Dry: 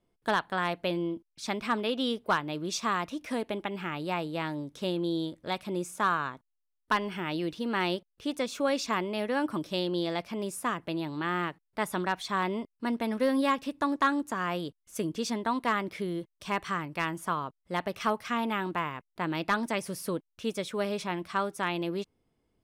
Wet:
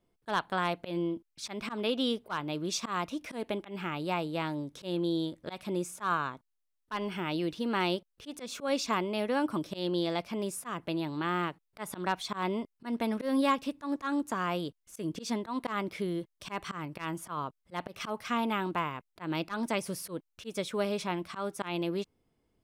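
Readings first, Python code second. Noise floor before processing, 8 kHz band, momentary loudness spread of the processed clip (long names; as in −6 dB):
−80 dBFS, −0.5 dB, 9 LU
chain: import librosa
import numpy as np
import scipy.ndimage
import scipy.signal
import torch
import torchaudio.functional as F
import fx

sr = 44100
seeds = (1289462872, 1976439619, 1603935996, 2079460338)

y = fx.auto_swell(x, sr, attack_ms=123.0)
y = fx.dynamic_eq(y, sr, hz=1800.0, q=5.6, threshold_db=-51.0, ratio=4.0, max_db=-6)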